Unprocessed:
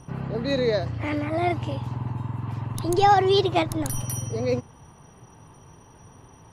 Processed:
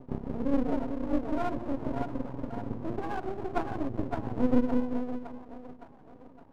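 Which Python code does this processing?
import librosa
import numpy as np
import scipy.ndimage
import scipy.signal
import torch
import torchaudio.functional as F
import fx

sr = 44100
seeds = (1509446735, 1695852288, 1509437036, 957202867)

y = fx.rider(x, sr, range_db=5, speed_s=0.5)
y = scipy.signal.sosfilt(scipy.signal.cheby1(6, 9, 1000.0, 'lowpass', fs=sr, output='sos'), y)
y = fx.rev_schroeder(y, sr, rt60_s=1.3, comb_ms=25, drr_db=5.0)
y = fx.dereverb_blind(y, sr, rt60_s=0.85)
y = fx.peak_eq(y, sr, hz=76.0, db=-12.5, octaves=1.2, at=(0.49, 2.61))
y = y * (1.0 - 0.63 / 2.0 + 0.63 / 2.0 * np.cos(2.0 * np.pi * 7.0 * (np.arange(len(y)) / sr)))
y = fx.peak_eq(y, sr, hz=260.0, db=11.5, octaves=0.47)
y = fx.echo_split(y, sr, split_hz=420.0, low_ms=193, high_ms=563, feedback_pct=52, wet_db=-4.5)
y = np.maximum(y, 0.0)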